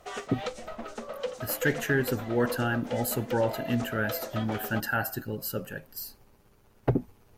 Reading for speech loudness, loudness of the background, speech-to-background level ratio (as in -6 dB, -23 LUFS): -30.5 LUFS, -38.0 LUFS, 7.5 dB